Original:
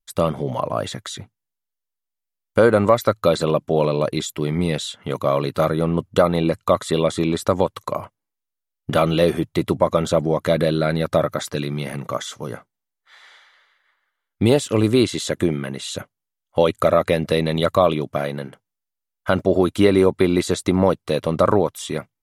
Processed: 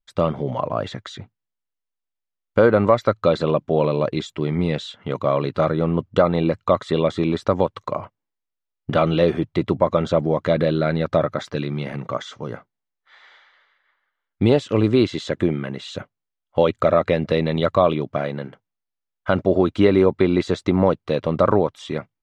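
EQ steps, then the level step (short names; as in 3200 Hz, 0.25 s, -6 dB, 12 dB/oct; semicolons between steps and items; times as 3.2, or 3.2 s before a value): air absorption 160 m; 0.0 dB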